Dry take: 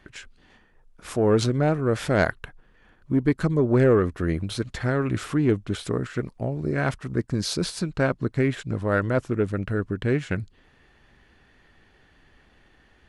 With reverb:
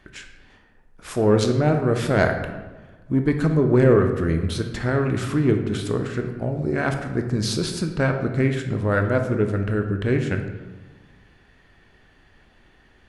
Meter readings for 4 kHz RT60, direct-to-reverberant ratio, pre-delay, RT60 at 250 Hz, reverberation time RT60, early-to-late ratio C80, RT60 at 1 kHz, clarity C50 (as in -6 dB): 0.75 s, 5.0 dB, 15 ms, 1.6 s, 1.3 s, 9.0 dB, 1.2 s, 7.5 dB